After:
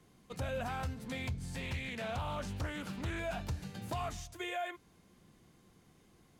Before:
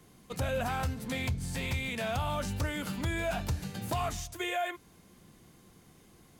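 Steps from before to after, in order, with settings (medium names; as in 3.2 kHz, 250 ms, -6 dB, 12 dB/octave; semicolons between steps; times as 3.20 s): treble shelf 10 kHz -9 dB; 1.61–3.20 s: loudspeaker Doppler distortion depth 0.38 ms; trim -5.5 dB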